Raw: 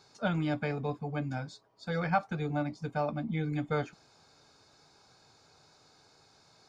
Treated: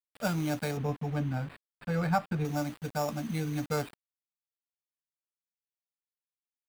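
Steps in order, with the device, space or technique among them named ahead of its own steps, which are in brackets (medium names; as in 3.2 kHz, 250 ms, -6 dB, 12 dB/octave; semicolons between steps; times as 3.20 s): early 8-bit sampler (sample-rate reducer 6.2 kHz, jitter 0%; bit crusher 8-bit); 0.77–2.45 s: tone controls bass +5 dB, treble -13 dB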